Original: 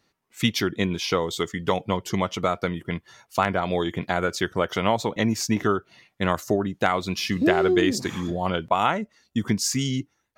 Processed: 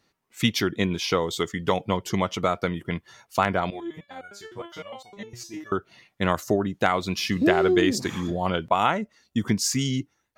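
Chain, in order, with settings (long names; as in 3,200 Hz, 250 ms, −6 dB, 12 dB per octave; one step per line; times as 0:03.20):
0:03.70–0:05.72: step-sequenced resonator 9.8 Hz 120–740 Hz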